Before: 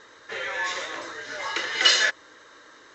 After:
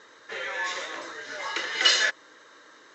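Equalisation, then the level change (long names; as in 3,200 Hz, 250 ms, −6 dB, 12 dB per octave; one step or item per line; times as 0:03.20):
high-pass filter 140 Hz 12 dB per octave
−2.0 dB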